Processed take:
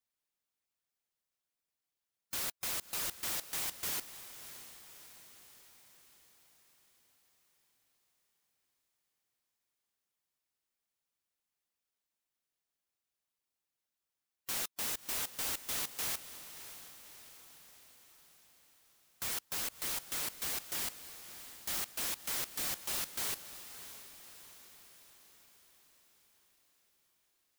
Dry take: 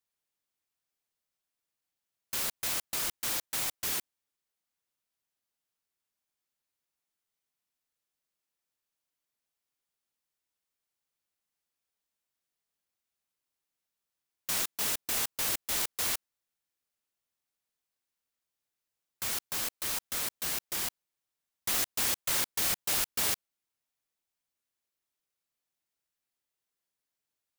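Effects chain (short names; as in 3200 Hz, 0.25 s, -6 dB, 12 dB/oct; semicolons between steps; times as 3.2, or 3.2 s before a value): harmonic-percussive split percussive +6 dB; wavefolder -24.5 dBFS; diffused feedback echo 0.614 s, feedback 56%, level -12.5 dB; gain -6.5 dB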